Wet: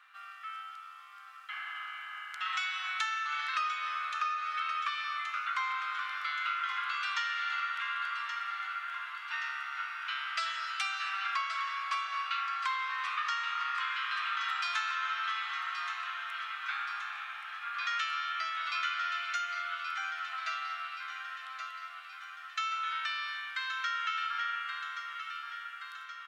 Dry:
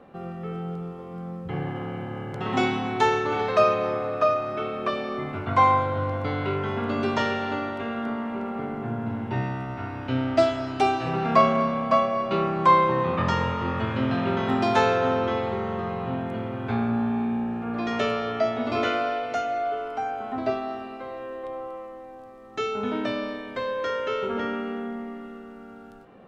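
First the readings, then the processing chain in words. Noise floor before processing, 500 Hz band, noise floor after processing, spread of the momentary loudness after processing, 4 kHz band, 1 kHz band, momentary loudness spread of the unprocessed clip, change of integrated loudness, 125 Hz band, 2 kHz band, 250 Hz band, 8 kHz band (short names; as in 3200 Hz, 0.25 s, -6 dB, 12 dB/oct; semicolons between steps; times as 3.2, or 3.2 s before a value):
-43 dBFS, under -35 dB, -48 dBFS, 9 LU, 0.0 dB, -9.0 dB, 15 LU, -8.5 dB, under -40 dB, 0.0 dB, under -40 dB, n/a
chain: elliptic high-pass 1300 Hz, stop band 70 dB; compressor 6:1, threshold -35 dBFS, peak gain reduction 12 dB; feedback echo 1.125 s, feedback 60%, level -9 dB; gain +4 dB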